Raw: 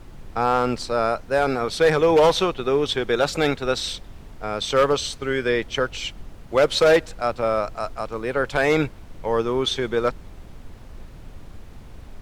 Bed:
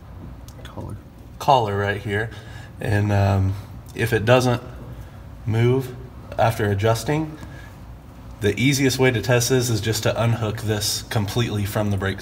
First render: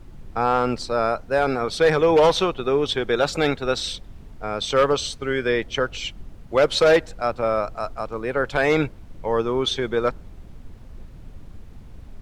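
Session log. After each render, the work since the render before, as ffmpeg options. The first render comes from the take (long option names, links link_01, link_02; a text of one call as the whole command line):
ffmpeg -i in.wav -af "afftdn=noise_reduction=6:noise_floor=-42" out.wav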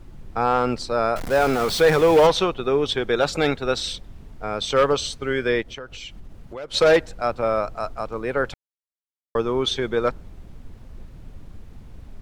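ffmpeg -i in.wav -filter_complex "[0:a]asettb=1/sr,asplit=3[link_01][link_02][link_03];[link_01]atrim=end=1.164[link_04];[link_02]atrim=start=1.16:end=2.27,asetpts=PTS-STARTPTS,afade=type=in:duration=0.004:curve=qsin,afade=type=out:start_time=1.106:duration=0.004:curve=qsin,aeval=exprs='val(0)+0.5*0.0562*sgn(val(0))':channel_layout=same[link_05];[link_03]atrim=start=2.266[link_06];[link_04][link_05]acrossfade=duration=0.004:curve1=hsin:curve2=qsin[link_07];[link_07][link_06]acrossfade=duration=0.004:curve1=qsin:curve2=hsin,asplit=3[link_08][link_09][link_10];[link_08]afade=type=out:start_time=5.61:duration=0.02[link_11];[link_09]acompressor=threshold=-34dB:ratio=4:attack=3.2:release=140:knee=1:detection=peak,afade=type=in:start_time=5.61:duration=0.02,afade=type=out:start_time=6.73:duration=0.02[link_12];[link_10]afade=type=in:start_time=6.73:duration=0.02[link_13];[link_11][link_12][link_13]amix=inputs=3:normalize=0,asplit=3[link_14][link_15][link_16];[link_14]atrim=end=8.54,asetpts=PTS-STARTPTS,afade=type=out:start_time=8.536:duration=0.004:curve=hsin[link_17];[link_15]atrim=start=8.54:end=9.35,asetpts=PTS-STARTPTS,volume=0[link_18];[link_16]atrim=start=9.35,asetpts=PTS-STARTPTS,afade=type=in:duration=0.004:curve=hsin[link_19];[link_17][link_18][link_19]concat=n=3:v=0:a=1" out.wav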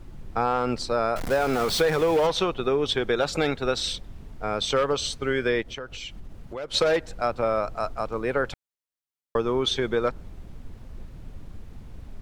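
ffmpeg -i in.wav -af "acompressor=threshold=-19dB:ratio=6" out.wav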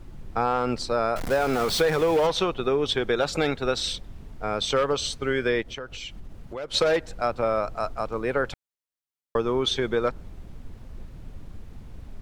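ffmpeg -i in.wav -af anull out.wav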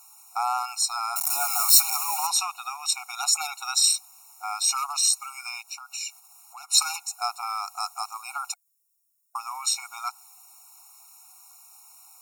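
ffmpeg -i in.wav -af "aexciter=amount=9.3:drive=7.7:freq=5300,afftfilt=real='re*eq(mod(floor(b*sr/1024/730),2),1)':imag='im*eq(mod(floor(b*sr/1024/730),2),1)':win_size=1024:overlap=0.75" out.wav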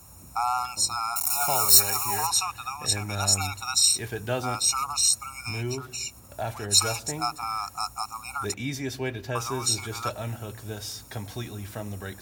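ffmpeg -i in.wav -i bed.wav -filter_complex "[1:a]volume=-13.5dB[link_01];[0:a][link_01]amix=inputs=2:normalize=0" out.wav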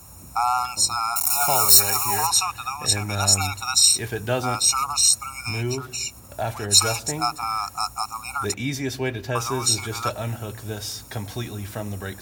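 ffmpeg -i in.wav -af "volume=4.5dB,alimiter=limit=-1dB:level=0:latency=1" out.wav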